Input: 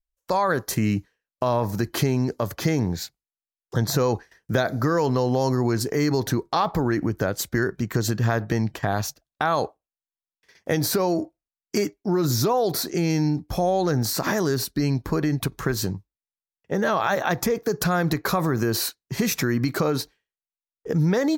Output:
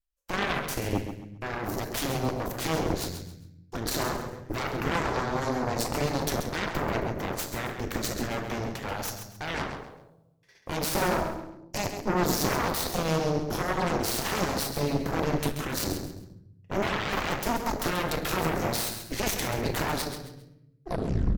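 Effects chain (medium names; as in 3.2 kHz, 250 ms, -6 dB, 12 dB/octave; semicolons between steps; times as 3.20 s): tape stop on the ending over 0.59 s; peak limiter -18.5 dBFS, peak gain reduction 10 dB; reverse; upward compressor, threshold -39 dBFS; reverse; simulated room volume 330 m³, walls mixed, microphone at 0.8 m; Chebyshev shaper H 3 -18 dB, 5 -22 dB, 6 -7 dB, 7 -10 dB, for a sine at -11.5 dBFS; on a send: feedback delay 134 ms, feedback 30%, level -9 dB; on the sum: trim -6.5 dB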